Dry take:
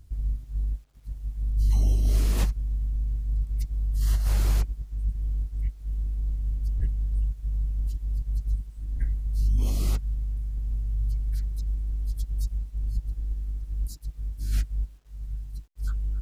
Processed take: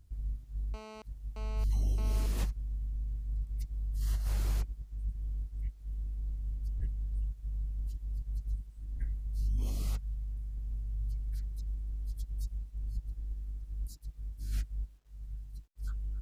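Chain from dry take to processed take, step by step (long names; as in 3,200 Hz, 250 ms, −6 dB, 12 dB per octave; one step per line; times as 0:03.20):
0:00.74–0:02.26: phone interference −39 dBFS
0:09.82–0:10.26: parametric band 330 Hz −14.5 dB 0.4 octaves
level −8.5 dB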